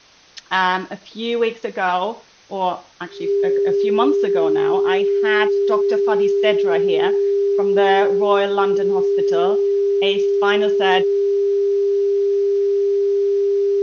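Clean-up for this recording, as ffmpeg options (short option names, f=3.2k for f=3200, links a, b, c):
-af "bandreject=f=400:w=30,agate=range=-21dB:threshold=-31dB"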